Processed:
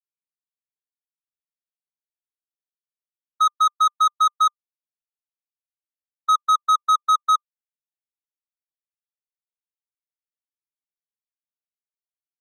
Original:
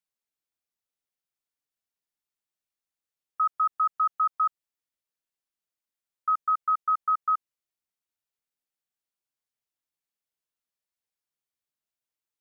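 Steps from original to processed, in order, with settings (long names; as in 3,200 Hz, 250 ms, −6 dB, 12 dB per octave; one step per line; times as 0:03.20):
noise gate −25 dBFS, range −35 dB
drawn EQ curve 280 Hz 0 dB, 410 Hz −14 dB, 580 Hz −3 dB, 830 Hz −18 dB, 1,200 Hz +13 dB, 1,700 Hz +4 dB, 2,600 Hz −16 dB, 3,700 Hz −5 dB, 5,300 Hz −20 dB
leveller curve on the samples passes 2
level −5.5 dB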